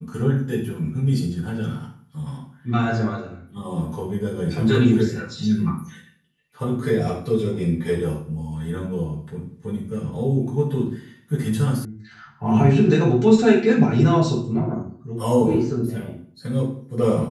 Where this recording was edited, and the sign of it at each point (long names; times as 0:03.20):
0:11.85: cut off before it has died away